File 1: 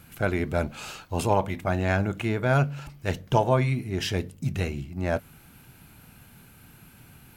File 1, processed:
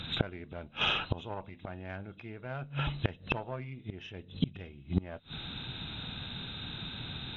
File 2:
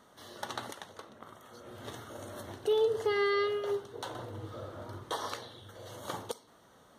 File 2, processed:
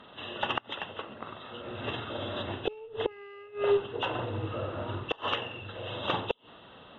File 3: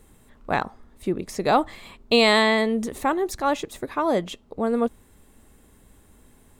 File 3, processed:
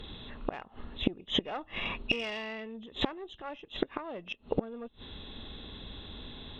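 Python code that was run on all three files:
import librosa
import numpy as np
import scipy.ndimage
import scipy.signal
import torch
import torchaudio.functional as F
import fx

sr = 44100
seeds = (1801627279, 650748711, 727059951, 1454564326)

p1 = fx.freq_compress(x, sr, knee_hz=2500.0, ratio=4.0)
p2 = fx.fold_sine(p1, sr, drive_db=4, ceiling_db=-3.5)
p3 = p1 + (p2 * 10.0 ** (-9.0 / 20.0))
p4 = fx.cheby_harmonics(p3, sr, harmonics=(2, 6), levels_db=(-9, -34), full_scale_db=-1.5)
p5 = fx.gate_flip(p4, sr, shuts_db=-17.0, range_db=-27)
y = p5 * 10.0 ** (3.0 / 20.0)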